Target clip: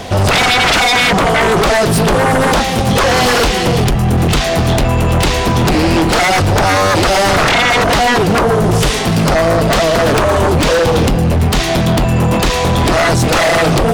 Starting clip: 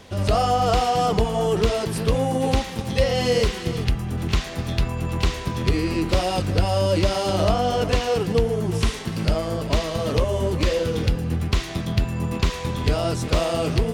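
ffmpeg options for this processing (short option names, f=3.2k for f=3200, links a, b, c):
-filter_complex "[0:a]equalizer=f=710:t=o:w=0.22:g=11,asplit=2[a][b];[b]acompressor=threshold=-24dB:ratio=6,volume=-1.5dB[c];[a][c]amix=inputs=2:normalize=0,aeval=exprs='0.75*sin(PI/2*5.62*val(0)/0.75)':c=same,volume=-5.5dB"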